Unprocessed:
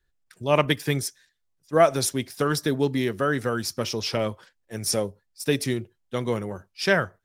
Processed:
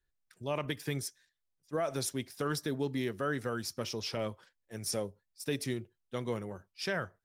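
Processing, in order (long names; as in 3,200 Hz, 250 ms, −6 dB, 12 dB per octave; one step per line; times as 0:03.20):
brickwall limiter −13.5 dBFS, peak gain reduction 8.5 dB
level −9 dB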